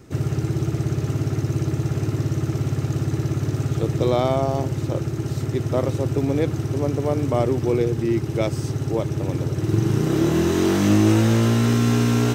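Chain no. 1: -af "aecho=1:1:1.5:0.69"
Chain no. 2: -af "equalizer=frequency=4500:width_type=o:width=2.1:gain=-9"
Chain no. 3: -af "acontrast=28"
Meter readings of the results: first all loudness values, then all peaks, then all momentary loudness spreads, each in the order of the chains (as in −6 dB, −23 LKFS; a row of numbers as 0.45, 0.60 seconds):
−20.5, −22.0, −17.0 LKFS; −5.5, −7.0, −3.5 dBFS; 6, 7, 6 LU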